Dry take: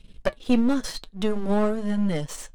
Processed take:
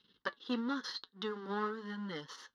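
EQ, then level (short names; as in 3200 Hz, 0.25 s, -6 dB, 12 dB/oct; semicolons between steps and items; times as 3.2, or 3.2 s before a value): BPF 450–4600 Hz; fixed phaser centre 2400 Hz, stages 6; -3.0 dB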